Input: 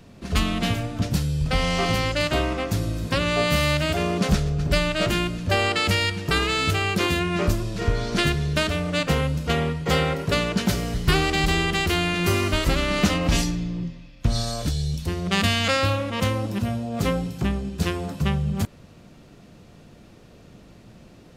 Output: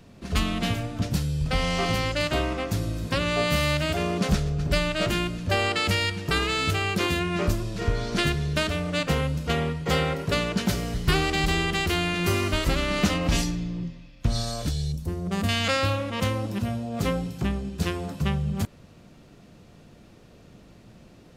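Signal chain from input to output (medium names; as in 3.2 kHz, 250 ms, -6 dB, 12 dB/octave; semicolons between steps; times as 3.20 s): 14.92–15.49 s: peaking EQ 3.1 kHz -13.5 dB 2.4 oct; trim -2.5 dB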